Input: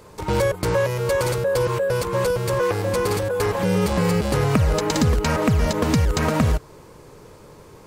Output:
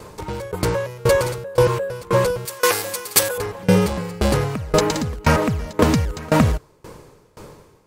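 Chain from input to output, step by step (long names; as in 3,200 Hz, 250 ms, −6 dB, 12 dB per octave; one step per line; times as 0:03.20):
0:02.45–0:03.38: spectral tilt +4.5 dB per octave
in parallel at −3.5 dB: soft clipping −15 dBFS, distortion −16 dB
on the sum: tremolo with a ramp in dB decaying 1.9 Hz, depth 25 dB
level +5 dB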